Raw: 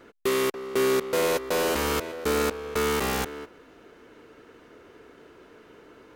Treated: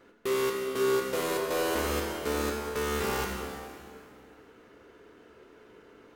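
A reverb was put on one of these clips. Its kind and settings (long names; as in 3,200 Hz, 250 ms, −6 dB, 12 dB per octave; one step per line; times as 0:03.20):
dense smooth reverb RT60 2.5 s, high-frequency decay 0.8×, DRR 0 dB
level −7 dB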